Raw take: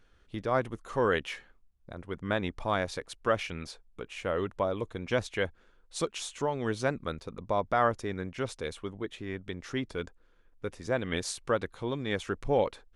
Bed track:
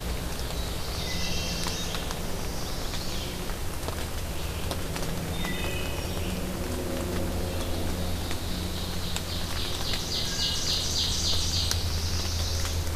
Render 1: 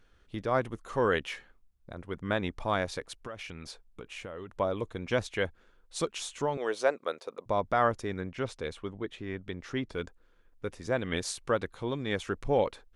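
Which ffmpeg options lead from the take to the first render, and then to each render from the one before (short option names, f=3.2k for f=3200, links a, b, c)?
-filter_complex "[0:a]asettb=1/sr,asplit=3[a][b][c];[a]atrim=end=3.194[d];[b]atrim=start=3.19:end=4.58,asetpts=PTS-STARTPTS,afade=t=in:d=0.004:c=qsin,afade=t=out:st=1.386:d=0.004:c=qsin,acompressor=threshold=-37dB:ratio=8:attack=3.2:release=140:knee=1:detection=peak[e];[c]atrim=start=4.576[f];[d][e]acrossfade=d=0.004:c1=hsin:c2=qsin[g];[g][f]acrossfade=d=0.004:c1=qsin:c2=hsin,asettb=1/sr,asplit=3[h][i][j];[h]atrim=end=6.574[k];[i]atrim=start=6.57:end=7.46,asetpts=PTS-STARTPTS,afade=t=in:d=0.004:c=qsin,afade=t=out:st=0.886:d=0.004:c=qsin,highpass=f=510:t=q:w=1.7[l];[j]atrim=start=7.456[m];[k][l]acrossfade=d=0.004:c1=hsin:c2=qsin[n];[n][m]acrossfade=d=0.004:c1=qsin:c2=hsin,asettb=1/sr,asplit=3[o][p][q];[o]atrim=end=8.204[r];[p]atrim=start=8.2:end=9.93,asetpts=PTS-STARTPTS,afade=t=in:d=0.004:c=qsin,afade=t=out:st=1.726:d=0.004:c=qsin,highshelf=f=7.5k:g=-10[s];[q]atrim=start=9.926[t];[r][s]acrossfade=d=0.004:c1=hsin:c2=qsin[u];[u][t]acrossfade=d=0.004:c1=qsin:c2=hsin"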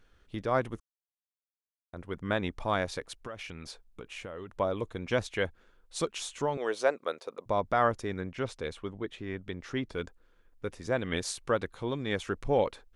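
-filter_complex "[0:a]asplit=3[a][b][c];[a]atrim=end=0.8,asetpts=PTS-STARTPTS,afade=t=out:st=0.796:d=0.004:c=hsin[d];[b]atrim=start=0.8:end=1.93,asetpts=PTS-STARTPTS,volume=0[e];[c]atrim=start=1.93,asetpts=PTS-STARTPTS,afade=t=in:d=0.004:c=hsin[f];[d][e][f]concat=n=3:v=0:a=1"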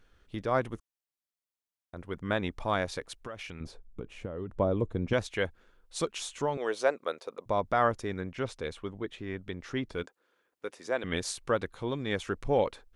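-filter_complex "[0:a]asettb=1/sr,asplit=3[a][b][c];[a]atrim=end=3.604[d];[b]atrim=start=3.6:end=5.13,asetpts=PTS-STARTPTS,afade=t=in:d=0.004:c=qsin,afade=t=out:st=1.526:d=0.004:c=qsin,tiltshelf=f=730:g=8.5[e];[c]atrim=start=5.126[f];[d][e]acrossfade=d=0.004:c1=hsin:c2=qsin[g];[g][f]acrossfade=d=0.004:c1=qsin:c2=hsin,asettb=1/sr,asplit=3[h][i][j];[h]atrim=end=10.034[k];[i]atrim=start=10.03:end=11.04,asetpts=PTS-STARTPTS,afade=t=in:d=0.004:c=qsin,afade=t=out:st=1.006:d=0.004:c=qsin,highpass=360[l];[j]atrim=start=11.036[m];[k][l]acrossfade=d=0.004:c1=hsin:c2=qsin[n];[n][m]acrossfade=d=0.004:c1=qsin:c2=hsin"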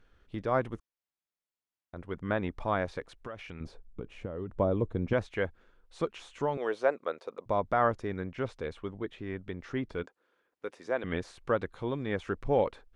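-filter_complex "[0:a]acrossover=split=2500[a][b];[b]acompressor=threshold=-48dB:ratio=4:attack=1:release=60[c];[a][c]amix=inputs=2:normalize=0,lowpass=f=3.3k:p=1"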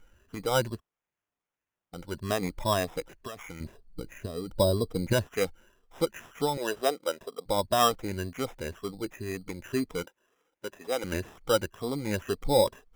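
-af "afftfilt=real='re*pow(10,15/40*sin(2*PI*(1.4*log(max(b,1)*sr/1024/100)/log(2)-(2)*(pts-256)/sr)))':imag='im*pow(10,15/40*sin(2*PI*(1.4*log(max(b,1)*sr/1024/100)/log(2)-(2)*(pts-256)/sr)))':win_size=1024:overlap=0.75,acrusher=samples=10:mix=1:aa=0.000001"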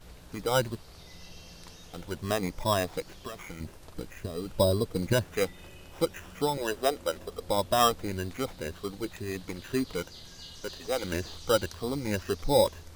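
-filter_complex "[1:a]volume=-18.5dB[a];[0:a][a]amix=inputs=2:normalize=0"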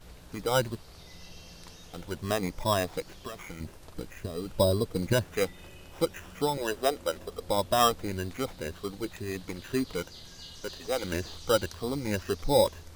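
-af anull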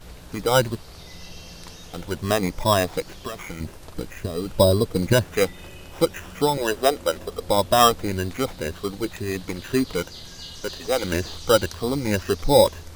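-af "volume=7.5dB"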